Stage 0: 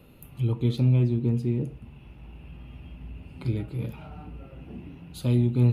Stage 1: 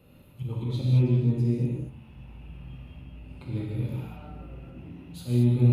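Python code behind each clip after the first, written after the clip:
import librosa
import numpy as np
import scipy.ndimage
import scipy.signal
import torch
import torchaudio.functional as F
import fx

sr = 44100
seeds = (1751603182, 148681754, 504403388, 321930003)

y = fx.auto_swell(x, sr, attack_ms=102.0)
y = fx.rev_gated(y, sr, seeds[0], gate_ms=250, shape='flat', drr_db=-4.0)
y = F.gain(torch.from_numpy(y), -6.0).numpy()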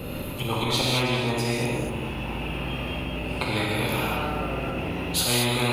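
y = x + 10.0 ** (-16.5 / 20.0) * np.pad(x, (int(237 * sr / 1000.0), 0))[:len(x)]
y = fx.spectral_comp(y, sr, ratio=4.0)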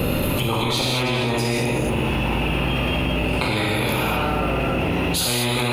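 y = fx.env_flatten(x, sr, amount_pct=100)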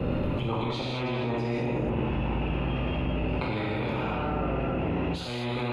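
y = fx.spacing_loss(x, sr, db_at_10k=29)
y = fx.band_widen(y, sr, depth_pct=70)
y = F.gain(torch.from_numpy(y), -5.0).numpy()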